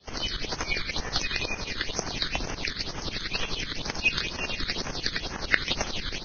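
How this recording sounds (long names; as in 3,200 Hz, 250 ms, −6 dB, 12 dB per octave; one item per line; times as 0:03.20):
tremolo saw up 11 Hz, depth 90%
phaser sweep stages 8, 2.1 Hz, lowest notch 760–4,000 Hz
Ogg Vorbis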